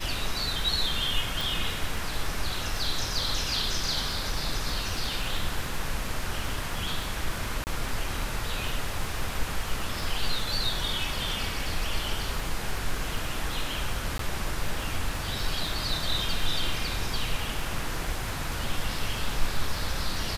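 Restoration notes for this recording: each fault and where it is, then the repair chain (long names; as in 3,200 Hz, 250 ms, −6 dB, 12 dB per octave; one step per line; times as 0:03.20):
surface crackle 36 per second −34 dBFS
0:01.41: click
0:07.64–0:07.67: drop-out 29 ms
0:14.18–0:14.19: drop-out 13 ms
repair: click removal
repair the gap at 0:07.64, 29 ms
repair the gap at 0:14.18, 13 ms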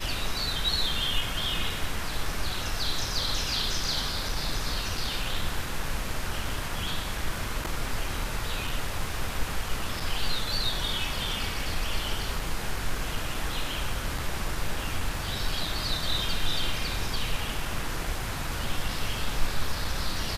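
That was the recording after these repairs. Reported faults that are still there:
none of them is left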